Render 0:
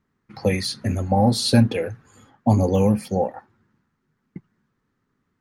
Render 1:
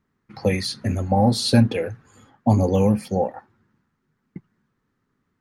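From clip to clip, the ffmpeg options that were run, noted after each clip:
ffmpeg -i in.wav -af "highshelf=frequency=9600:gain=-4" out.wav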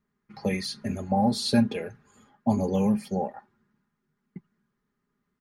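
ffmpeg -i in.wav -af "aecho=1:1:4.9:0.58,volume=-7dB" out.wav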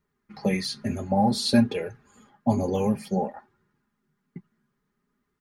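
ffmpeg -i in.wav -af "flanger=delay=2.1:depth=5.9:regen=-44:speed=0.55:shape=sinusoidal,volume=6dB" out.wav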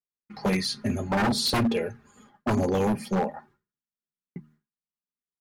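ffmpeg -i in.wav -af "bandreject=frequency=76.61:width_type=h:width=4,bandreject=frequency=153.22:width_type=h:width=4,bandreject=frequency=229.83:width_type=h:width=4,bandreject=frequency=306.44:width_type=h:width=4,agate=range=-33dB:threshold=-54dB:ratio=3:detection=peak,aeval=exprs='0.1*(abs(mod(val(0)/0.1+3,4)-2)-1)':channel_layout=same,volume=2dB" out.wav

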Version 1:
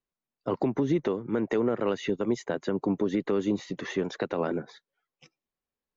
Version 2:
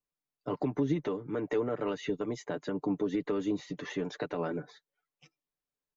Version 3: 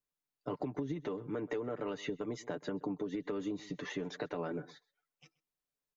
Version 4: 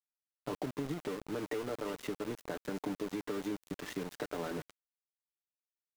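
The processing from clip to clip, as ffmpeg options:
ffmpeg -i in.wav -af "aecho=1:1:6.8:0.64,volume=-6dB" out.wav
ffmpeg -i in.wav -filter_complex "[0:a]asplit=2[link_01][link_02];[link_02]adelay=128.3,volume=-23dB,highshelf=frequency=4000:gain=-2.89[link_03];[link_01][link_03]amix=inputs=2:normalize=0,acompressor=threshold=-32dB:ratio=6,volume=-1.5dB" out.wav
ffmpeg -i in.wav -af "aecho=1:1:367:0.178,aeval=exprs='val(0)*gte(abs(val(0)),0.01)':channel_layout=same" out.wav

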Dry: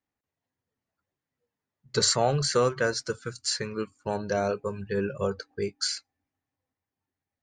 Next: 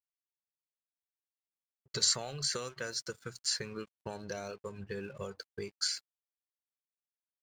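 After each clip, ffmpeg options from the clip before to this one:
ffmpeg -i in.wav -filter_complex "[0:a]acrossover=split=2300[link_01][link_02];[link_01]acompressor=threshold=-33dB:ratio=12[link_03];[link_03][link_02]amix=inputs=2:normalize=0,aeval=exprs='sgn(val(0))*max(abs(val(0))-0.00168,0)':channel_layout=same,volume=-3.5dB" out.wav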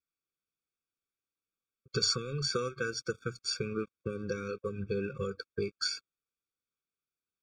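ffmpeg -i in.wav -af "aemphasis=mode=reproduction:type=50fm,afftfilt=real='re*eq(mod(floor(b*sr/1024/540),2),0)':imag='im*eq(mod(floor(b*sr/1024/540),2),0)':win_size=1024:overlap=0.75,volume=7dB" out.wav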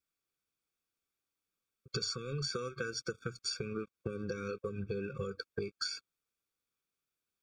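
ffmpeg -i in.wav -af "acompressor=threshold=-38dB:ratio=6,volume=3.5dB" out.wav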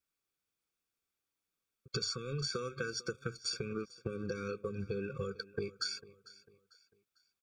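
ffmpeg -i in.wav -af "aecho=1:1:448|896|1344:0.106|0.0403|0.0153" out.wav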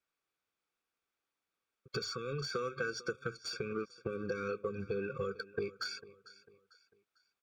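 ffmpeg -i in.wav -filter_complex "[0:a]asplit=2[link_01][link_02];[link_02]highpass=frequency=720:poles=1,volume=11dB,asoftclip=type=tanh:threshold=-22dB[link_03];[link_01][link_03]amix=inputs=2:normalize=0,lowpass=frequency=1500:poles=1,volume=-6dB,volume=1dB" out.wav

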